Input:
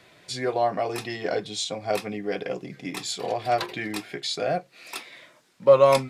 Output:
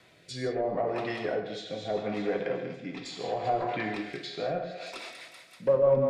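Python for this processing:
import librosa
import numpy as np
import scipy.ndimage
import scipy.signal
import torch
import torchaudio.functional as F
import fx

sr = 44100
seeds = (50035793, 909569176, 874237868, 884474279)

p1 = 10.0 ** (-21.5 / 20.0) * (np.abs((x / 10.0 ** (-21.5 / 20.0) + 3.0) % 4.0 - 2.0) - 1.0)
p2 = x + (p1 * 10.0 ** (-7.0 / 20.0))
p3 = fx.air_absorb(p2, sr, metres=150.0, at=(2.6, 3.04), fade=0.02)
p4 = p3 + fx.echo_thinned(p3, sr, ms=192, feedback_pct=57, hz=500.0, wet_db=-8.0, dry=0)
p5 = fx.env_lowpass_down(p4, sr, base_hz=740.0, full_db=-18.0)
p6 = fx.rev_gated(p5, sr, seeds[0], gate_ms=180, shape='flat', drr_db=4.0)
p7 = fx.rotary_switch(p6, sr, hz=0.75, then_hz=6.0, switch_at_s=4.19)
y = p7 * 10.0 ** (-4.5 / 20.0)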